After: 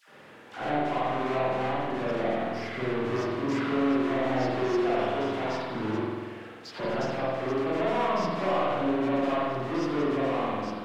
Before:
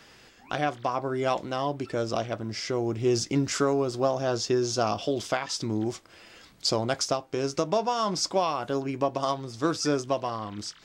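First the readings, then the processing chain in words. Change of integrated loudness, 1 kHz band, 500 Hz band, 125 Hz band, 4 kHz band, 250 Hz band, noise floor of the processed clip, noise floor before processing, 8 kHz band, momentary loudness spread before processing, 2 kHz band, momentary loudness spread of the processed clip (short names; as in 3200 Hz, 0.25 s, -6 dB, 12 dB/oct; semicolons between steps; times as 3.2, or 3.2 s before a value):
-0.5 dB, +0.5 dB, -0.5 dB, -3.0 dB, -8.0 dB, +1.5 dB, -47 dBFS, -55 dBFS, under -15 dB, 5 LU, +3.0 dB, 6 LU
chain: half-waves squared off; HPF 120 Hz 12 dB/oct; soft clip -25 dBFS, distortion -7 dB; low shelf 160 Hz -8 dB; flange 0.44 Hz, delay 4.8 ms, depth 8.8 ms, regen +61%; dispersion lows, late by 82 ms, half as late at 990 Hz; added noise violet -47 dBFS; tape spacing loss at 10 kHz 23 dB; spring tank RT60 1.6 s, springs 47 ms, chirp 45 ms, DRR -8.5 dB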